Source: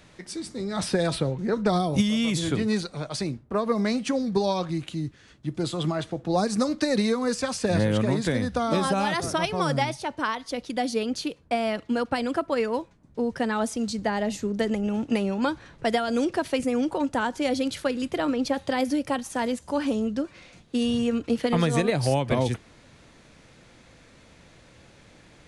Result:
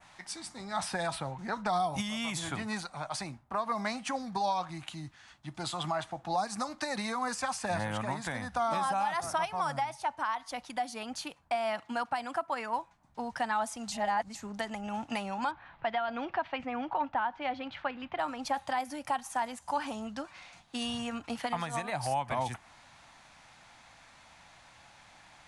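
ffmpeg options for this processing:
-filter_complex "[0:a]asettb=1/sr,asplit=3[s0][s1][s2];[s0]atrim=end=11.554[s3];[s1]atrim=start=11.55:end=12.74,asetpts=PTS-STARTPTS,afade=t=in:d=0.004:c=qsin,afade=t=out:st=1.186:d=0.004:c=qsin,highpass=97[s4];[s2]atrim=start=12.736[s5];[s3][s4]acrossfade=d=0.004:c1=hsin:c2=qsin[s6];[s6][s5]acrossfade=d=0.004:c1=qsin:c2=hsin,asettb=1/sr,asplit=3[s7][s8][s9];[s7]atrim=end=15.514[s10];[s8]atrim=start=15.51:end=18.19,asetpts=PTS-STARTPTS,afade=t=in:d=0.004:c=qsin,afade=t=out:st=2.676:d=0.004:c=qsin,lowpass=f=3300:w=0.5412,lowpass=f=3300:w=1.3066[s11];[s9]atrim=start=18.186[s12];[s10][s11]acrossfade=d=0.004:c1=hsin:c2=qsin[s13];[s13][s12]acrossfade=d=0.004:c1=qsin:c2=hsin,asplit=3[s14][s15][s16];[s14]atrim=end=13.922[s17];[s15]atrim=start=13.918:end=14.352,asetpts=PTS-STARTPTS,areverse[s18];[s16]atrim=start=14.348[s19];[s17][s18]acrossfade=d=0.004:c1=hsin:c2=hsin[s20];[s20][s19]acrossfade=d=0.004:c1=hsin:c2=hsin,lowshelf=f=600:t=q:w=3:g=-9.5,alimiter=limit=0.106:level=0:latency=1:release=315,adynamicequalizer=threshold=0.00316:dfrequency=4100:dqfactor=0.99:tfrequency=4100:tqfactor=0.99:attack=5:release=100:ratio=0.375:range=3.5:mode=cutabove:tftype=bell,volume=0.841"

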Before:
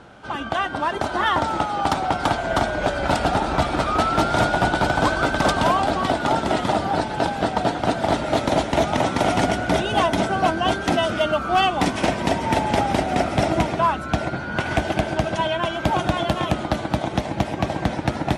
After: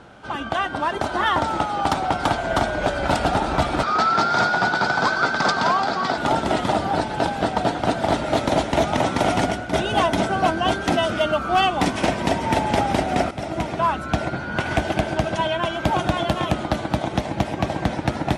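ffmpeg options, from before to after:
-filter_complex "[0:a]asettb=1/sr,asplit=3[s0][s1][s2];[s0]atrim=end=3.834[s3];[s1]atrim=start=3.83:end=6.18,asetpts=PTS-STARTPTS,afade=t=in:d=0.004:c=qsin,afade=t=out:st=2.346:d=0.004:c=qsin,highpass=180,equalizer=f=300:t=q:w=4:g=-8,equalizer=f=590:t=q:w=4:g=-6,equalizer=f=1400:t=q:w=4:g=5,equalizer=f=2900:t=q:w=4:g=-6,equalizer=f=4700:t=q:w=4:g=7,lowpass=f=7000:w=0.5412,lowpass=f=7000:w=1.3066[s4];[s2]atrim=start=6.176[s5];[s3][s4]acrossfade=d=0.004:c1=hsin:c2=qsin[s6];[s6][s5]acrossfade=d=0.004:c1=qsin:c2=hsin,asplit=3[s7][s8][s9];[s7]atrim=end=9.73,asetpts=PTS-STARTPTS,afade=t=out:st=9.25:d=0.48:c=qsin:silence=0.316228[s10];[s8]atrim=start=9.73:end=13.31,asetpts=PTS-STARTPTS,afade=t=in:d=0.004:c=hsin:silence=0.316228,afade=t=out:st=3.576:d=0.004:c=hsin:silence=0.211349[s11];[s9]atrim=start=13.31,asetpts=PTS-STARTPTS,afade=t=in:d=0.65:silence=0.211349[s12];[s10][s11][s12]concat=n=3:v=0:a=1"

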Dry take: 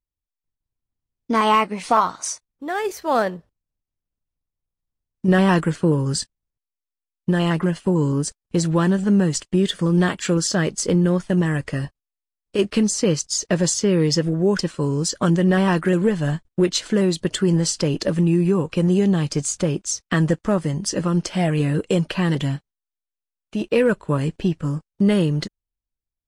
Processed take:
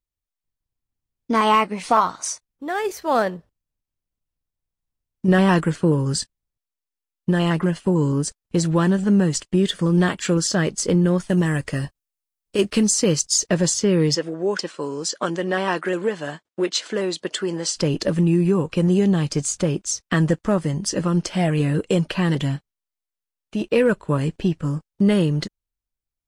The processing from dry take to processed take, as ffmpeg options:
-filter_complex "[0:a]asettb=1/sr,asplit=3[s0][s1][s2];[s0]atrim=end=11.184[s3];[s1]atrim=start=11.18:end=13.49,asetpts=PTS-STARTPTS,afade=t=in:d=0.004:c=qsin,afade=t=out:st=2.306:d=0.004:c=qsin,highshelf=f=5600:g=7.5[s4];[s2]atrim=start=13.486[s5];[s3][s4]acrossfade=d=0.004:c1=hsin:c2=qsin[s6];[s6][s5]acrossfade=d=0.004:c1=qsin:c2=hsin,asettb=1/sr,asplit=3[s7][s8][s9];[s7]atrim=end=14.154[s10];[s8]atrim=start=14.15:end=17.76,asetpts=PTS-STARTPTS,afade=t=in:d=0.004:c=qsin,afade=t=out:st=3.606:d=0.004:c=qsin,highpass=380,lowpass=7900[s11];[s9]atrim=start=17.756[s12];[s10][s11]acrossfade=d=0.004:c1=hsin:c2=qsin[s13];[s13][s12]acrossfade=d=0.004:c1=qsin:c2=hsin"

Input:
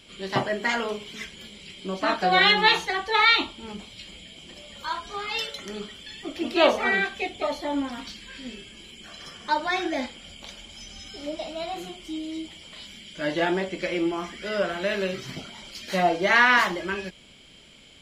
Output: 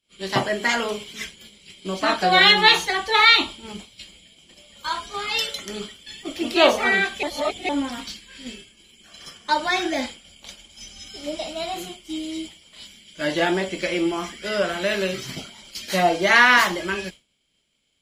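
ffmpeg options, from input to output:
-filter_complex "[0:a]asplit=3[s0][s1][s2];[s0]atrim=end=7.232[s3];[s1]atrim=start=7.228:end=7.692,asetpts=PTS-STARTPTS,areverse[s4];[s2]atrim=start=7.688[s5];[s3][s4]acrossfade=d=0.004:c1=hsin:c2=hsin[s6];[s6][s5]acrossfade=d=0.004:c1=hsin:c2=hsin,aemphasis=mode=production:type=cd,agate=range=0.0224:threshold=0.02:ratio=3:detection=peak,volume=1.41"

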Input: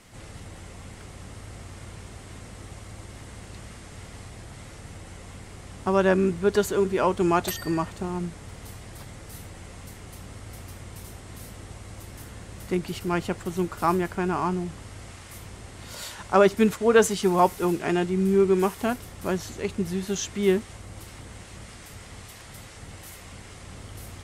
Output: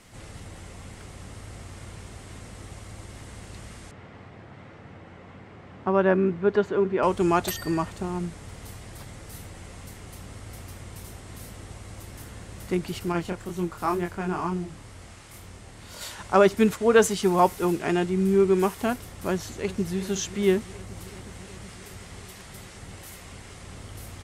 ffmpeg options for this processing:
-filter_complex "[0:a]asettb=1/sr,asplit=3[s0][s1][s2];[s0]atrim=end=3.914[s3];[s1]atrim=start=3.91:end=7.03,asetpts=PTS-STARTPTS,afade=t=in:d=0.004:c=qsin,afade=t=out:st=3.116:d=0.004:c=qsin,highpass=120,lowpass=2200[s4];[s2]atrim=start=7.026[s5];[s3][s4]acrossfade=d=0.004:c1=hsin:c2=qsin[s6];[s6][s5]acrossfade=d=0.004:c1=qsin:c2=hsin,asettb=1/sr,asplit=3[s7][s8][s9];[s7]atrim=end=13.124[s10];[s8]atrim=start=13.12:end=16.01,asetpts=PTS-STARTPTS,afade=t=in:d=0.004:c=qsin,afade=t=out:st=2.886:d=0.004:c=qsin,flanger=delay=22.5:depth=5:speed=2.1[s11];[s9]atrim=start=16.006[s12];[s10][s11]acrossfade=d=0.004:c1=hsin:c2=qsin[s13];[s13][s12]acrossfade=d=0.004:c1=qsin:c2=hsin,asplit=2[s14][s15];[s15]afade=t=in:st=19.3:d=0.01,afade=t=out:st=19.98:d=0.01,aecho=0:1:370|740|1110|1480|1850|2220|2590|2960|3330|3700|4070|4440:0.188365|0.150692|0.120554|0.0964428|0.0771543|0.0617234|0.0493787|0.039503|0.0316024|0.0252819|0.0202255|0.0161804[s16];[s14][s16]amix=inputs=2:normalize=0"

